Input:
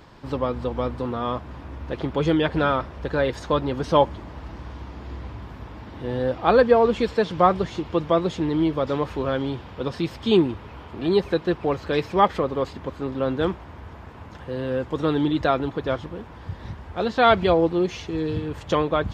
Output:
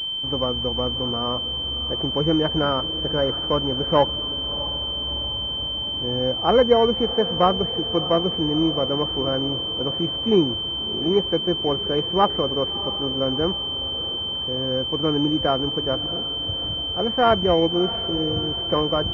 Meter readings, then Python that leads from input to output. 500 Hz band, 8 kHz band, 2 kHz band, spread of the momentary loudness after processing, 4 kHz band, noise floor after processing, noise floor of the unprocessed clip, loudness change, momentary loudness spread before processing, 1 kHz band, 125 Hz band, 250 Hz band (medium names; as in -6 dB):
0.0 dB, no reading, -5.5 dB, 6 LU, +16.5 dB, -28 dBFS, -42 dBFS, +1.5 dB, 19 LU, -1.0 dB, 0.0 dB, 0.0 dB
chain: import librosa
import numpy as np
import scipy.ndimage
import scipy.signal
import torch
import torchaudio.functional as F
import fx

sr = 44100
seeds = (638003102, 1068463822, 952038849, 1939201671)

y = fx.echo_diffused(x, sr, ms=656, feedback_pct=57, wet_db=-15)
y = fx.pwm(y, sr, carrier_hz=3100.0)